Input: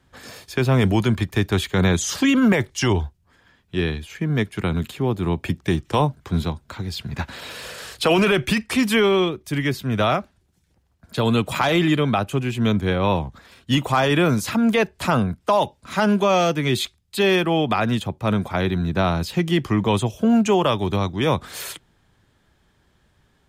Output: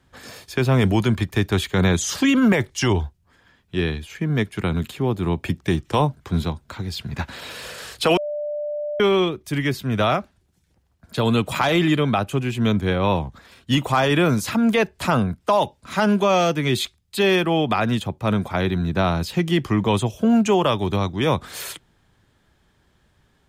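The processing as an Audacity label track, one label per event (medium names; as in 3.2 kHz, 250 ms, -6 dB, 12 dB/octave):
8.170000	9.000000	bleep 592 Hz -24 dBFS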